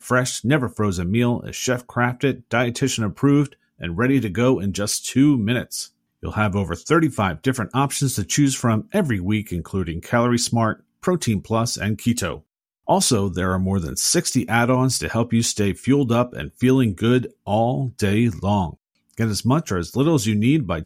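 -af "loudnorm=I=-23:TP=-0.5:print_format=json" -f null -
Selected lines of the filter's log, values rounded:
"input_i" : "-20.8",
"input_tp" : "-3.1",
"input_lra" : "2.1",
"input_thresh" : "-31.0",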